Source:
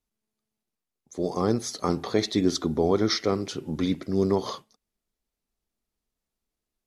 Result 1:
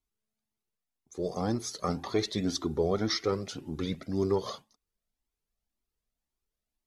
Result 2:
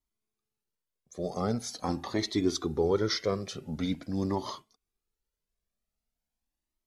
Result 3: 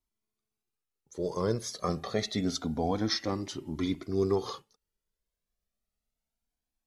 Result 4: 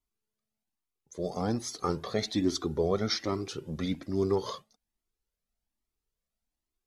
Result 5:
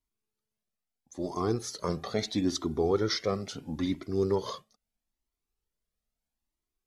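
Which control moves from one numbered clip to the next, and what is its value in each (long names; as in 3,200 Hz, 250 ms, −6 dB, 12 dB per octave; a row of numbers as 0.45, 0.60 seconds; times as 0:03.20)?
flanger whose copies keep moving one way, speed: 1.9, 0.44, 0.27, 1.2, 0.76 Hertz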